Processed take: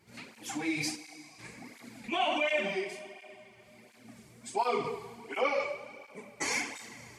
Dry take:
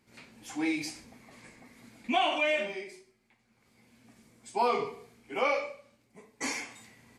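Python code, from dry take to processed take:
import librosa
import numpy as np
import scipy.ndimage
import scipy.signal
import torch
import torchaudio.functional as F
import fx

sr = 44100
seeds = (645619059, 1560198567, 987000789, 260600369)

p1 = fx.over_compress(x, sr, threshold_db=-35.0, ratio=-0.5)
p2 = x + (p1 * librosa.db_to_amplitude(-2.5))
p3 = fx.formant_cascade(p2, sr, vowel='a', at=(0.95, 1.38), fade=0.02)
p4 = fx.rev_schroeder(p3, sr, rt60_s=3.0, comb_ms=26, drr_db=12.0)
y = fx.flanger_cancel(p4, sr, hz=1.4, depth_ms=4.3)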